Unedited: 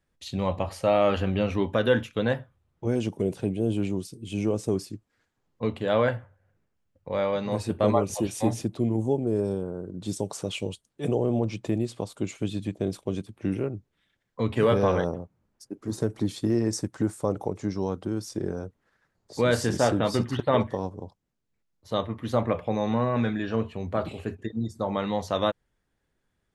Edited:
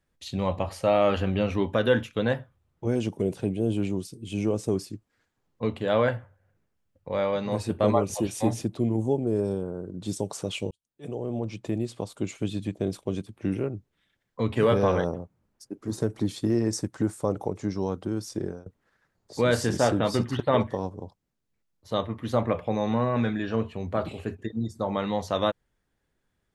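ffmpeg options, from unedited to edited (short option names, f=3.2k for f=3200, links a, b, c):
-filter_complex "[0:a]asplit=3[a][b][c];[a]atrim=end=10.71,asetpts=PTS-STARTPTS,afade=t=out:st=10.706:d=0.004:c=hsin[d];[b]atrim=start=10.71:end=18.66,asetpts=PTS-STARTPTS,afade=t=in:d=1.8:c=qsin,afade=t=out:st=7.7:d=0.25:silence=0.0749894[e];[c]atrim=start=18.66,asetpts=PTS-STARTPTS,afade=t=in:d=0.004:c=hsin:silence=0.0749894[f];[d][e][f]concat=n=3:v=0:a=1"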